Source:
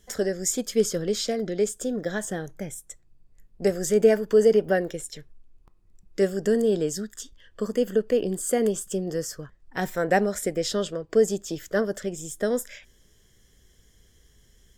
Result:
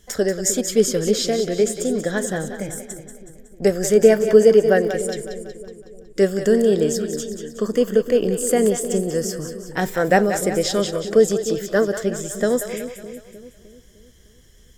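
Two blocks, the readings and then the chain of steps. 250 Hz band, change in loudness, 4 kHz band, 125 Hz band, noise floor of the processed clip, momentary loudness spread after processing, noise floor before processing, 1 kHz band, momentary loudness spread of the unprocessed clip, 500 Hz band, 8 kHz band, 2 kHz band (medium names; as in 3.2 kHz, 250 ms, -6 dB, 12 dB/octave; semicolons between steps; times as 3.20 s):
+6.0 dB, +6.0 dB, +6.0 dB, +6.0 dB, -50 dBFS, 16 LU, -60 dBFS, +6.0 dB, 16 LU, +6.5 dB, +6.0 dB, +6.0 dB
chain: two-band feedback delay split 460 Hz, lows 305 ms, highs 185 ms, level -9 dB; trim +5.5 dB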